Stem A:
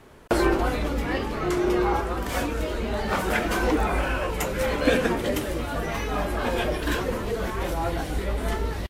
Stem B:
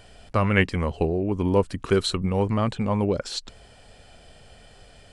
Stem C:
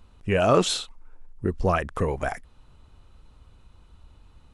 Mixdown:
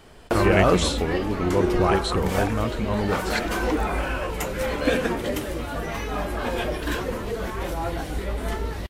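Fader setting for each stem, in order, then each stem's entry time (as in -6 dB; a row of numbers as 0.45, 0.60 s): -1.0, -3.0, -0.5 dB; 0.00, 0.00, 0.15 s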